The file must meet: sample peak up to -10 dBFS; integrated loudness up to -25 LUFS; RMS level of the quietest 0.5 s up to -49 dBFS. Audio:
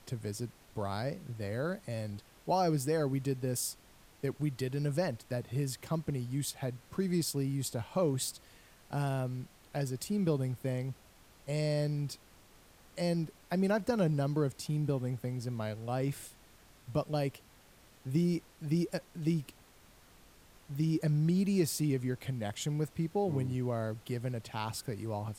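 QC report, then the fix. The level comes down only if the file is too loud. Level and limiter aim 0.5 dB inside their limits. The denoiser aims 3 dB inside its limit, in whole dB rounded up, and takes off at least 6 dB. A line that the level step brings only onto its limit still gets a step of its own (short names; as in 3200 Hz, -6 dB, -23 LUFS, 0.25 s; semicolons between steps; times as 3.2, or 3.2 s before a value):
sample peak -18.0 dBFS: OK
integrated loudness -34.5 LUFS: OK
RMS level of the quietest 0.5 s -60 dBFS: OK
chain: none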